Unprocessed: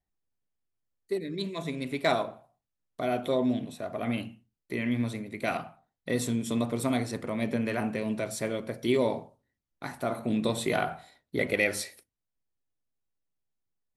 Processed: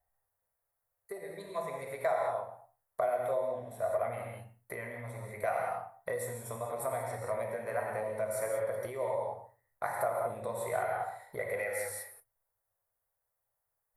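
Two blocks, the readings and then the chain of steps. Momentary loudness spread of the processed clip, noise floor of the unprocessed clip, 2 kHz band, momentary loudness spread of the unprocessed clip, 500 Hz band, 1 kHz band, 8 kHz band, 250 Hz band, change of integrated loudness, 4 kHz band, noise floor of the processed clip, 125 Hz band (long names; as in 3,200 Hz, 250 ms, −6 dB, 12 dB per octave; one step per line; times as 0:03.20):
11 LU, below −85 dBFS, −6.5 dB, 10 LU, −2.0 dB, 0.0 dB, −4.0 dB, −21.5 dB, −5.0 dB, below −15 dB, −84 dBFS, −9.5 dB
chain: reverb whose tail is shaped and stops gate 220 ms flat, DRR 0.5 dB
downward compressor 5 to 1, threshold −37 dBFS, peak gain reduction 16.5 dB
drawn EQ curve 110 Hz 0 dB, 290 Hz −18 dB, 540 Hz +10 dB, 1,200 Hz +8 dB, 2,000 Hz +3 dB, 2,900 Hz −14 dB, 6,600 Hz −5 dB, 11,000 Hz +10 dB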